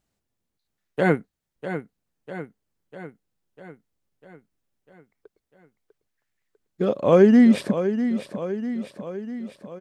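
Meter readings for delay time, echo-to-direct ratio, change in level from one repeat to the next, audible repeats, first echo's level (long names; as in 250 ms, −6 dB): 648 ms, −8.0 dB, −4.5 dB, 6, −10.0 dB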